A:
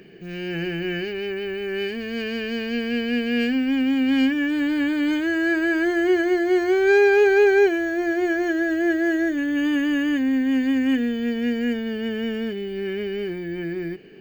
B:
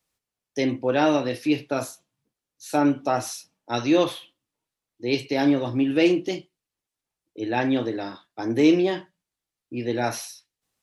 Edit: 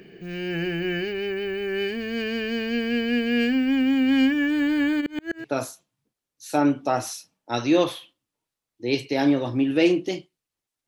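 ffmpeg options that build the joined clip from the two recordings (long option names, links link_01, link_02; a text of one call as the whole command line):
ffmpeg -i cue0.wav -i cue1.wav -filter_complex "[0:a]asplit=3[link_01][link_02][link_03];[link_01]afade=type=out:start_time=5:duration=0.02[link_04];[link_02]aeval=exprs='val(0)*pow(10,-35*if(lt(mod(-7.9*n/s,1),2*abs(-7.9)/1000),1-mod(-7.9*n/s,1)/(2*abs(-7.9)/1000),(mod(-7.9*n/s,1)-2*abs(-7.9)/1000)/(1-2*abs(-7.9)/1000))/20)':channel_layout=same,afade=type=in:start_time=5:duration=0.02,afade=type=out:start_time=5.46:duration=0.02[link_05];[link_03]afade=type=in:start_time=5.46:duration=0.02[link_06];[link_04][link_05][link_06]amix=inputs=3:normalize=0,apad=whole_dur=10.87,atrim=end=10.87,atrim=end=5.46,asetpts=PTS-STARTPTS[link_07];[1:a]atrim=start=1.58:end=7.07,asetpts=PTS-STARTPTS[link_08];[link_07][link_08]acrossfade=duration=0.08:curve1=tri:curve2=tri" out.wav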